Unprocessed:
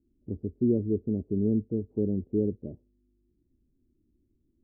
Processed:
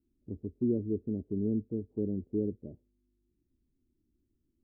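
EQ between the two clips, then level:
dynamic equaliser 290 Hz, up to +3 dB, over −36 dBFS, Q 2.5
−6.0 dB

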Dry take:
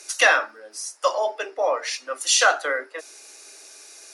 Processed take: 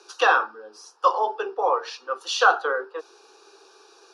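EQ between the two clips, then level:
high-frequency loss of the air 310 metres
phaser with its sweep stopped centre 410 Hz, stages 8
+7.0 dB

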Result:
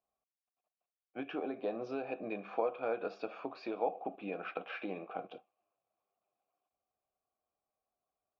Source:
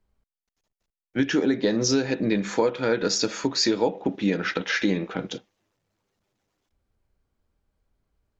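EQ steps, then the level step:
formant filter a
high-frequency loss of the air 350 metres
+3.5 dB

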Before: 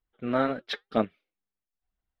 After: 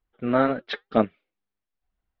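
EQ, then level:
Gaussian smoothing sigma 2 samples
+5.0 dB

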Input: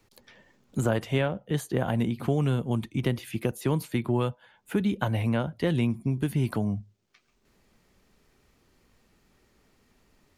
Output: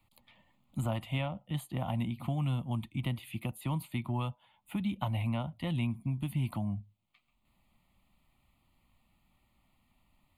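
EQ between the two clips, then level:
phaser with its sweep stopped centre 1,600 Hz, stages 6
−4.0 dB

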